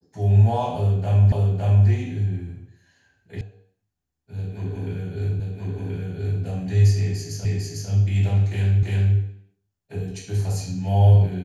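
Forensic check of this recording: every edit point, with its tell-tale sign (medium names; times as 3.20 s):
1.32 s: repeat of the last 0.56 s
3.41 s: sound stops dead
5.40 s: repeat of the last 1.03 s
7.45 s: repeat of the last 0.45 s
8.83 s: repeat of the last 0.34 s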